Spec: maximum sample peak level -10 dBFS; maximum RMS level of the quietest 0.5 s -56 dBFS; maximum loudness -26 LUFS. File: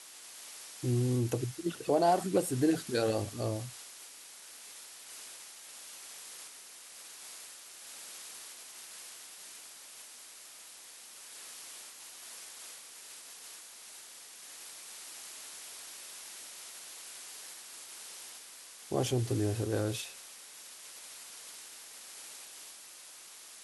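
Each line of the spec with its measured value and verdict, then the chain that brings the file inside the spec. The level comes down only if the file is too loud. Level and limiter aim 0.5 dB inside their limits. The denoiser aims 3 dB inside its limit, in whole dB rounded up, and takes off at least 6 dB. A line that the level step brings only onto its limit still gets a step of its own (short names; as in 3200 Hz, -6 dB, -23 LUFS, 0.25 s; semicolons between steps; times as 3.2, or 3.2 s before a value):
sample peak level -15.5 dBFS: OK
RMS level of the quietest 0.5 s -51 dBFS: fail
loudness -38.0 LUFS: OK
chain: denoiser 8 dB, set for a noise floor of -51 dBFS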